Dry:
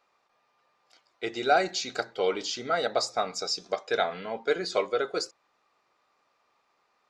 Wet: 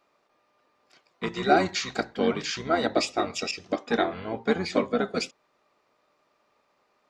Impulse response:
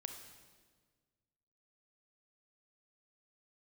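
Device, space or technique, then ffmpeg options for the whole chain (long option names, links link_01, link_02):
octave pedal: -filter_complex "[0:a]asplit=2[link_01][link_02];[link_02]asetrate=22050,aresample=44100,atempo=2,volume=-2dB[link_03];[link_01][link_03]amix=inputs=2:normalize=0,asettb=1/sr,asplit=3[link_04][link_05][link_06];[link_04]atrim=end=3.514[link_07];[link_05]atrim=start=3.51:end=5.01,asetpts=PTS-STARTPTS,afade=type=in:duration=0.004:curve=qsin,afade=type=out:start_time=1.496:duration=0.004:curve=qsin,adynamicequalizer=threshold=0.0112:dfrequency=2100:dqfactor=0.7:tfrequency=2100:tqfactor=0.7:attack=5:release=100:ratio=0.375:range=2.5:mode=cutabove:tftype=highshelf[link_08];[link_06]atrim=start=5.006[link_09];[link_07][link_08]acrossfade=duration=0.004:curve1=hsin:curve2=qsin[link_10];[link_10][link_09]acrossfade=duration=0.004:curve1=qsin:curve2=hsin"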